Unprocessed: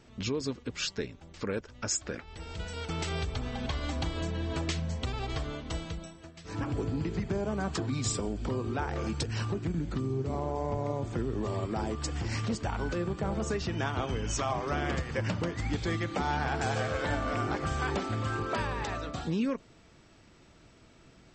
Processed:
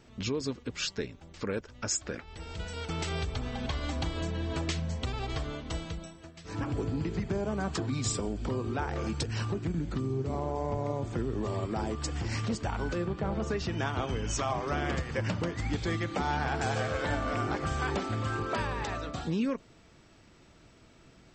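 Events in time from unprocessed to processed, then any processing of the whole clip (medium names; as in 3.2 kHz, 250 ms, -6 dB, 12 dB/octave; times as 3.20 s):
13.05–13.57 s: low-pass 4.7 kHz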